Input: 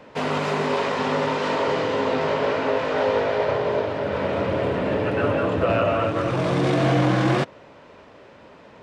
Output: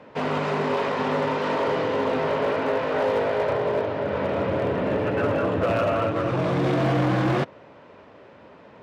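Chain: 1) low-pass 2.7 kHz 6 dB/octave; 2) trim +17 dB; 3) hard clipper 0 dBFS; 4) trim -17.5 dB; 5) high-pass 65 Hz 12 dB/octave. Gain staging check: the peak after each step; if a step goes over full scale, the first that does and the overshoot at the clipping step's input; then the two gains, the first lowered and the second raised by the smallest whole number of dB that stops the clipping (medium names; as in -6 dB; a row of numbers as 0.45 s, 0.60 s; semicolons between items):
-10.5 dBFS, +6.5 dBFS, 0.0 dBFS, -17.5 dBFS, -13.0 dBFS; step 2, 6.5 dB; step 2 +10 dB, step 4 -10.5 dB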